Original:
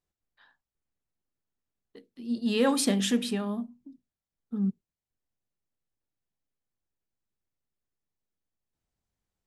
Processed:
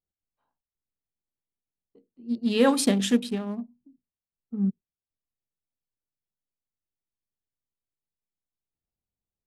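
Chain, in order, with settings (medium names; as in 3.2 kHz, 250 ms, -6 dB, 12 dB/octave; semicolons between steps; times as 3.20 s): local Wiener filter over 25 samples; upward expansion 1.5:1, over -44 dBFS; trim +5 dB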